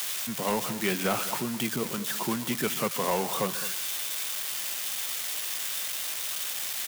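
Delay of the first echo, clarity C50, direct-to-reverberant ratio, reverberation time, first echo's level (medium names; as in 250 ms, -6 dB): 140 ms, no reverb, no reverb, no reverb, -18.5 dB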